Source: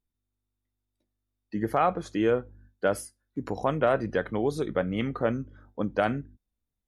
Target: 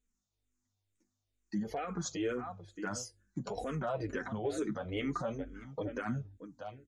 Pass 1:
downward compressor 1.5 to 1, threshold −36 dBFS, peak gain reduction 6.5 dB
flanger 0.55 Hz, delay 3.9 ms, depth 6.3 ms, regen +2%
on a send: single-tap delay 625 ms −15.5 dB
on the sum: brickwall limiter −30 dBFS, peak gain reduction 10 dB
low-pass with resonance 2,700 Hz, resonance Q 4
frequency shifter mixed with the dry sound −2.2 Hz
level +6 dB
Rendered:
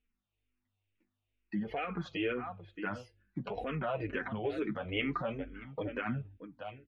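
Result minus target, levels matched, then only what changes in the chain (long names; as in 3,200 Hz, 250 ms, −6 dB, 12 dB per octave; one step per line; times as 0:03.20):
2,000 Hz band +4.0 dB
change: low-pass with resonance 6,800 Hz, resonance Q 4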